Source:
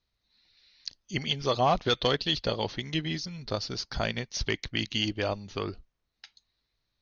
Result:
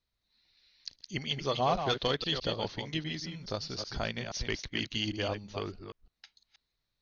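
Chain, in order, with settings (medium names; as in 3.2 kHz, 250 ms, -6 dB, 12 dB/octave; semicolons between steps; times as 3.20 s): chunks repeated in reverse 160 ms, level -7 dB; trim -4.5 dB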